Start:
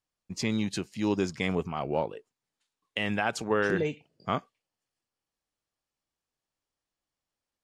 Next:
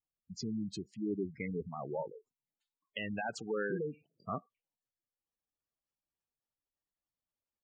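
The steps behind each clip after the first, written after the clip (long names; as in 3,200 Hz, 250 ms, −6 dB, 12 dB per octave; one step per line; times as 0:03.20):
gate on every frequency bin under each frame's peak −10 dB strong
level −7.5 dB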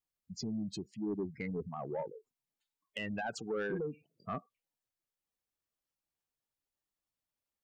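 soft clipping −29 dBFS, distortion −19 dB
level +1 dB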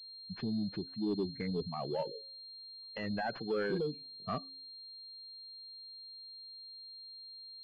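hum removal 272.3 Hz, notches 2
switching amplifier with a slow clock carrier 4,200 Hz
level +2.5 dB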